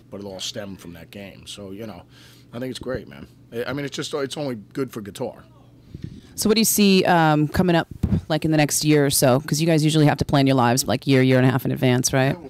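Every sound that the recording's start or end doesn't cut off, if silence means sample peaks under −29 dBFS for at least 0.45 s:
0:02.54–0:05.30

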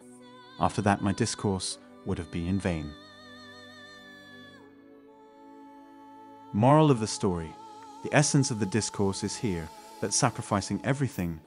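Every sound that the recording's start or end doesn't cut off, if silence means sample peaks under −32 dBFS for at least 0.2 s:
0:00.59–0:01.74
0:02.07–0:02.89
0:06.54–0:07.47
0:08.05–0:09.65

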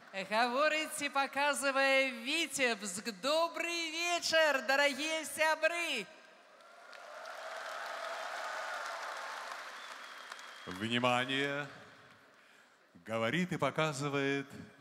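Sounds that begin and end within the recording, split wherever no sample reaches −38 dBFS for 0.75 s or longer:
0:06.93–0:11.65

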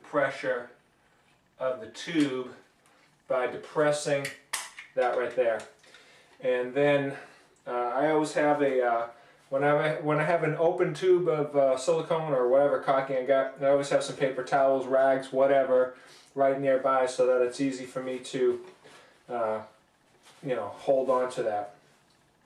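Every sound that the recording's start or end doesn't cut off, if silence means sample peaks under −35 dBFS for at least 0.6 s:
0:01.61–0:02.50
0:03.30–0:05.64
0:06.44–0:18.57
0:19.30–0:19.62
0:20.45–0:21.66

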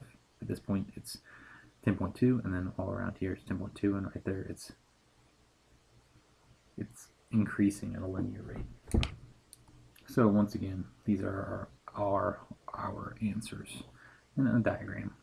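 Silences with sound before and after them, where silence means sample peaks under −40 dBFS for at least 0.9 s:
0:04.70–0:06.78

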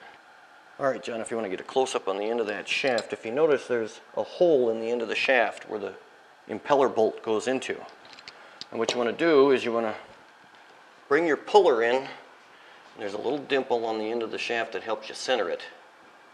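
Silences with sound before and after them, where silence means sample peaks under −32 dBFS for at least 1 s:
0:09.97–0:11.11

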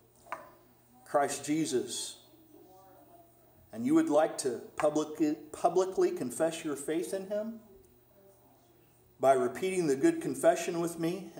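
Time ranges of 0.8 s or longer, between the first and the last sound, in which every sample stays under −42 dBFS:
0:02.13–0:03.73
0:07.57–0:09.21

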